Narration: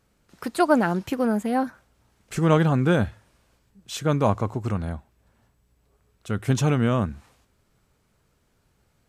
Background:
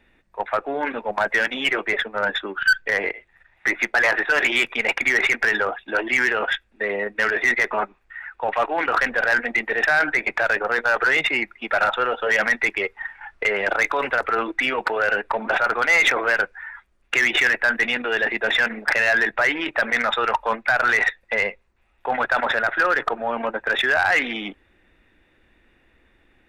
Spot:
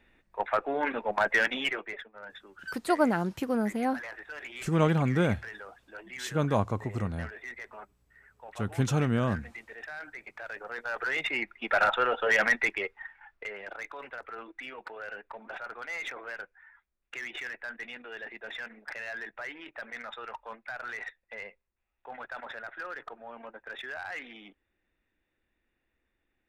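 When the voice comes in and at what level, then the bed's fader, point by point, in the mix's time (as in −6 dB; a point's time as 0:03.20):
2.30 s, −5.5 dB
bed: 0:01.54 −4.5 dB
0:02.11 −23 dB
0:10.26 −23 dB
0:11.70 −4.5 dB
0:12.52 −4.5 dB
0:13.64 −20 dB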